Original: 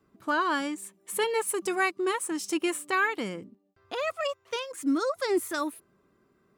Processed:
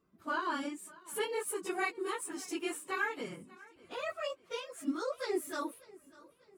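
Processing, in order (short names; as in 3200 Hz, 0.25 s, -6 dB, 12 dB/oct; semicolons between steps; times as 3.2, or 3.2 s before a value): phase scrambler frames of 50 ms; 2.17–2.82 sample gate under -54 dBFS; warbling echo 0.594 s, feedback 44%, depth 55 cents, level -21.5 dB; gain -8 dB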